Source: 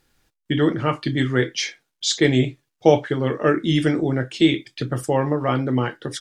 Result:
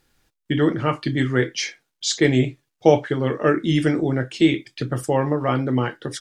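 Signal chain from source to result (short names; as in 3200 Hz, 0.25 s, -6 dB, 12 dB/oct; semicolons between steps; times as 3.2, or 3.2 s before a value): dynamic EQ 3500 Hz, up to -5 dB, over -43 dBFS, Q 5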